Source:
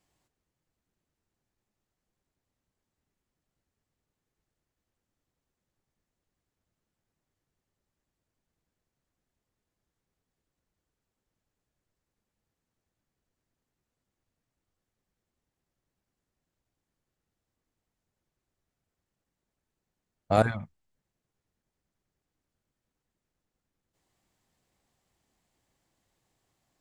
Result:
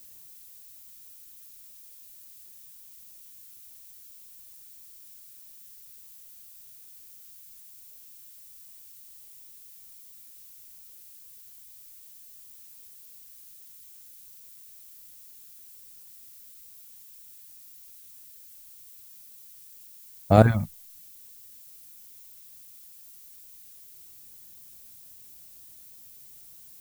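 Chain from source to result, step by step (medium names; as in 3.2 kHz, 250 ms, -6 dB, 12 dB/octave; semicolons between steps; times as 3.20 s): bass shelf 440 Hz +10 dB; added noise violet -51 dBFS; trim +1.5 dB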